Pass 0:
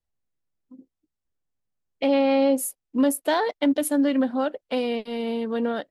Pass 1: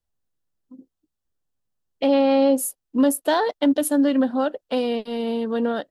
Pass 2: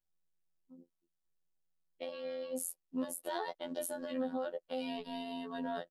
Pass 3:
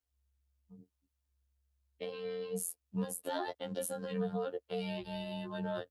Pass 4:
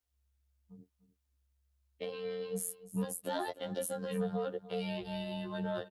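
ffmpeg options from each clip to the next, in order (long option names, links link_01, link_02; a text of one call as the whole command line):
ffmpeg -i in.wav -af "equalizer=frequency=2200:width_type=o:width=0.31:gain=-8,volume=2.5dB" out.wav
ffmpeg -i in.wav -af "aecho=1:1:5.4:0.93,alimiter=limit=-19dB:level=0:latency=1:release=41,afftfilt=real='hypot(re,im)*cos(PI*b)':imag='0':win_size=2048:overlap=0.75,volume=-8dB" out.wav
ffmpeg -i in.wav -af "afreqshift=-67,volume=1dB" out.wav
ffmpeg -i in.wav -filter_complex "[0:a]asplit=2[link_01][link_02];[link_02]asoftclip=type=tanh:threshold=-27dB,volume=-4dB[link_03];[link_01][link_03]amix=inputs=2:normalize=0,aecho=1:1:297:0.15,volume=-3dB" out.wav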